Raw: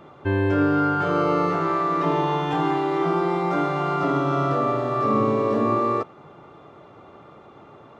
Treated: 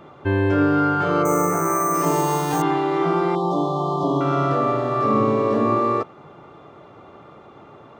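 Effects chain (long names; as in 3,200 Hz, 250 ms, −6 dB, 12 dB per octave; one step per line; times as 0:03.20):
0:03.35–0:04.21: linear-phase brick-wall band-stop 1,200–2,900 Hz
0:01.25–0:02.62: bad sample-rate conversion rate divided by 6×, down filtered, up hold
0:01.23–0:01.94: gain on a spectral selection 2,600–5,900 Hz −14 dB
level +2 dB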